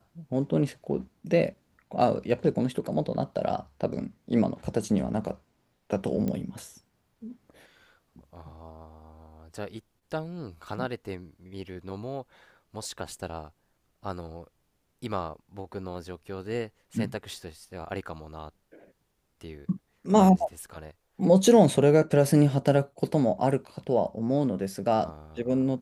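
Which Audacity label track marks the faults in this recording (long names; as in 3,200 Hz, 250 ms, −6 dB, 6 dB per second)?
6.280000	6.280000	click −19 dBFS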